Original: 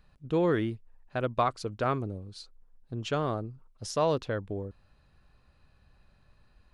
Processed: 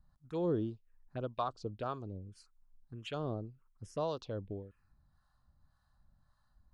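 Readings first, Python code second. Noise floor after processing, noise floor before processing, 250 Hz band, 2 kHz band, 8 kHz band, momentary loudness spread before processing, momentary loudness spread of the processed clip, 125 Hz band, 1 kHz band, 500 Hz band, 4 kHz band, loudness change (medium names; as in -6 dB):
-74 dBFS, -64 dBFS, -7.0 dB, -15.5 dB, -16.0 dB, 16 LU, 18 LU, -7.5 dB, -9.5 dB, -8.5 dB, -9.0 dB, -8.0 dB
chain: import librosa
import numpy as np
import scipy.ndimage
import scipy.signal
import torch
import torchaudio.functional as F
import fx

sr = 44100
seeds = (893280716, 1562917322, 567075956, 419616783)

y = fx.harmonic_tremolo(x, sr, hz=1.8, depth_pct=70, crossover_hz=660.0)
y = fx.env_phaser(y, sr, low_hz=410.0, high_hz=2100.0, full_db=-30.5)
y = y * librosa.db_to_amplitude(-4.0)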